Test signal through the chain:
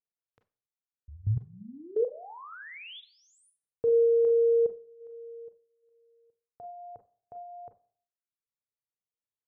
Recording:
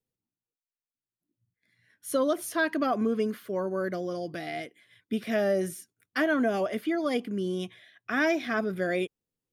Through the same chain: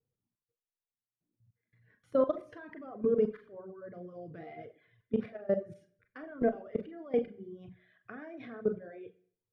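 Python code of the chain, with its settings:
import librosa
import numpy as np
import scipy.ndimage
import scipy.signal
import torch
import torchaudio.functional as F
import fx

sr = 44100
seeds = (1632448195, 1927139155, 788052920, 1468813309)

p1 = fx.peak_eq(x, sr, hz=110.0, db=12.5, octaves=0.85)
p2 = fx.over_compress(p1, sr, threshold_db=-33.0, ratio=-1.0)
p3 = p1 + F.gain(torch.from_numpy(p2), -3.0).numpy()
p4 = scipy.signal.sosfilt(scipy.signal.butter(2, 1500.0, 'lowpass', fs=sr, output='sos'), p3)
p5 = fx.peak_eq(p4, sr, hz=460.0, db=10.0, octaves=0.28)
p6 = fx.level_steps(p5, sr, step_db=21)
p7 = fx.rev_schroeder(p6, sr, rt60_s=0.56, comb_ms=30, drr_db=3.5)
p8 = fx.dereverb_blind(p7, sr, rt60_s=0.73)
y = F.gain(torch.from_numpy(p8), -3.5).numpy()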